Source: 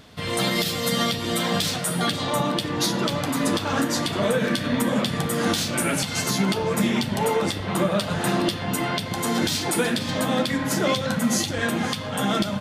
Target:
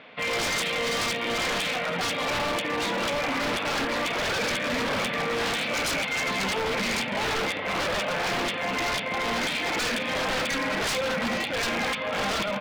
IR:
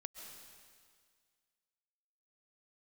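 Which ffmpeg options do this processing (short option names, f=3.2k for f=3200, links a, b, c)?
-af "acrusher=bits=3:mode=log:mix=0:aa=0.000001,highpass=330,equalizer=f=360:t=q:w=4:g=-8,equalizer=f=520:t=q:w=4:g=4,equalizer=f=2.3k:t=q:w=4:g=9,lowpass=f=3.1k:w=0.5412,lowpass=f=3.1k:w=1.3066,aeval=exprs='0.0596*(abs(mod(val(0)/0.0596+3,4)-2)-1)':c=same,volume=2.5dB"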